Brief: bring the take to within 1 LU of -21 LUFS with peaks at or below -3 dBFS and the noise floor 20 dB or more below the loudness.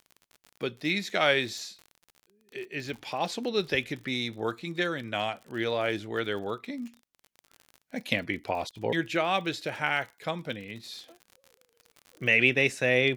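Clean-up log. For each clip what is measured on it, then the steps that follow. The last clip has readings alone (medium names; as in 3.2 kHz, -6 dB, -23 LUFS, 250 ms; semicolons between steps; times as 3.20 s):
tick rate 48 per s; loudness -29.0 LUFS; peak level -7.0 dBFS; loudness target -21.0 LUFS
-> de-click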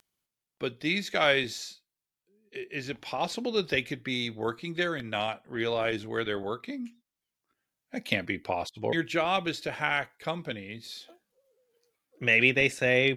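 tick rate 0.15 per s; loudness -29.0 LUFS; peak level -7.0 dBFS; loudness target -21.0 LUFS
-> trim +8 dB; peak limiter -3 dBFS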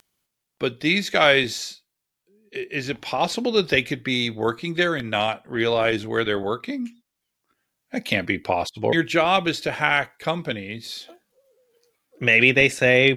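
loudness -21.5 LUFS; peak level -3.0 dBFS; noise floor -81 dBFS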